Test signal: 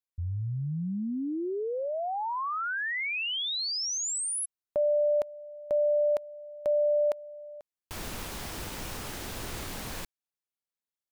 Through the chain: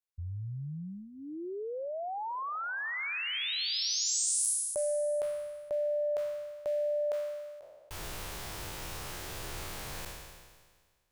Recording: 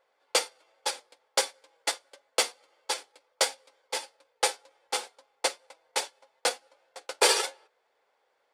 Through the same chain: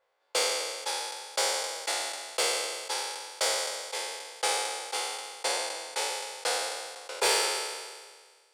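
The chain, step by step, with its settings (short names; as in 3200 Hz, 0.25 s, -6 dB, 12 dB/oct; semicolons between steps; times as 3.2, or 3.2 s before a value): spectral trails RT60 1.65 s; bell 240 Hz -13.5 dB 0.41 oct; soft clip -10.5 dBFS; gain -5.5 dB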